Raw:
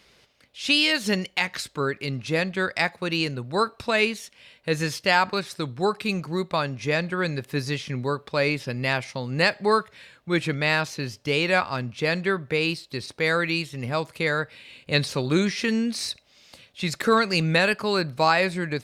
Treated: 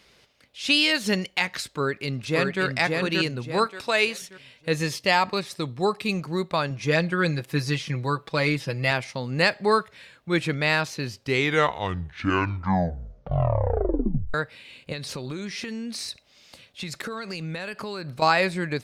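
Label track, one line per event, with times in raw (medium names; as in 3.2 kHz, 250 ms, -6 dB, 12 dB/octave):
1.650000	2.630000	echo throw 580 ms, feedback 35%, level -3 dB
3.660000	4.220000	tone controls bass -12 dB, treble +3 dB
4.730000	6.190000	band-stop 1.5 kHz, Q 5.8
6.700000	8.910000	comb 6.1 ms, depth 60%
11.020000	11.020000	tape stop 3.32 s
14.920000	18.220000	compression 10:1, threshold -29 dBFS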